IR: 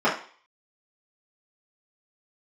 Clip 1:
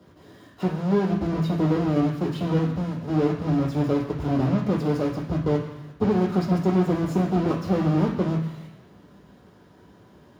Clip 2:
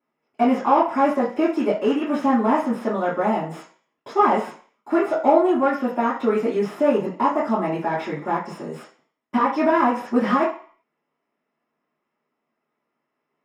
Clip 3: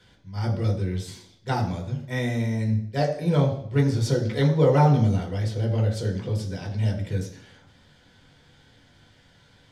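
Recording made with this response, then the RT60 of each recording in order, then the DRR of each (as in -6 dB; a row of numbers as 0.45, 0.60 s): 2; 1.1, 0.45, 0.65 s; 0.5, -9.5, -0.5 dB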